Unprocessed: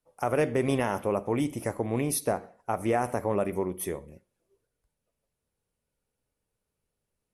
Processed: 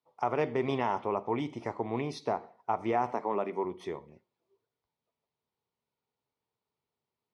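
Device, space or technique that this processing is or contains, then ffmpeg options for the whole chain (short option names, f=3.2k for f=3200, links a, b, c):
kitchen radio: -filter_complex "[0:a]highpass=170,equalizer=f=190:t=q:w=4:g=-7,equalizer=f=290:t=q:w=4:g=-6,equalizer=f=540:t=q:w=4:g=-9,equalizer=f=940:t=q:w=4:g=5,equalizer=f=1.6k:t=q:w=4:g=-9,equalizer=f=2.7k:t=q:w=4:g=-5,lowpass=f=4.5k:w=0.5412,lowpass=f=4.5k:w=1.3066,asettb=1/sr,asplit=3[a][b][c];[a]atrim=end=3.124[d];[b]atrim=start=3.12:end=3.65,asetpts=PTS-STARTPTS,afade=t=in:d=0.004:c=qsin,afade=t=out:st=0.526:d=0.004:c=qsin,highpass=f=170:w=0.5412,highpass=f=170:w=1.3066[e];[c]atrim=start=3.646[f];[d][e]acrossfade=d=0.004:c1=hsin:c2=qsin[g];[g][f]acrossfade=d=0.004:c1=qsin:c2=hsin"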